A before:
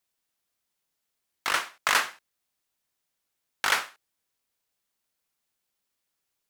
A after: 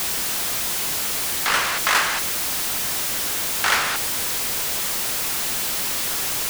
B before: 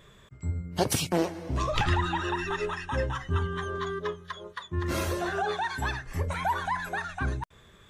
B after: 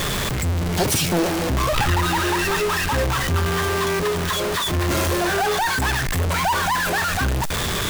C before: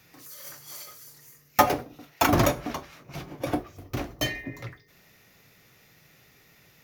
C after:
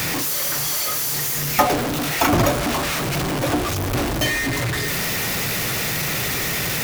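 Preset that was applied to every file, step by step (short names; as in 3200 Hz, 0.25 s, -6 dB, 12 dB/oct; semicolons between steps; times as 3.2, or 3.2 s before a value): zero-crossing step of -17.5 dBFS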